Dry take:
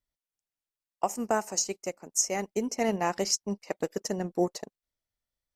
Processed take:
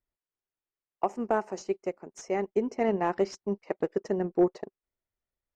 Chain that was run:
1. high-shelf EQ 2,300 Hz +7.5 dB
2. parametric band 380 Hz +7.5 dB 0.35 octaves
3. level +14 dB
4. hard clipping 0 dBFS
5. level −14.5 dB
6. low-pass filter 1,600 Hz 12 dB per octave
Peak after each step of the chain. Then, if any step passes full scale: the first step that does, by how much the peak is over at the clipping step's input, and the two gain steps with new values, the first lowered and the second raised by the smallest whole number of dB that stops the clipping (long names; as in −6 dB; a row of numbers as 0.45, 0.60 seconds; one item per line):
−5.5, −5.5, +8.5, 0.0, −14.5, −14.0 dBFS
step 3, 8.5 dB
step 3 +5 dB, step 5 −5.5 dB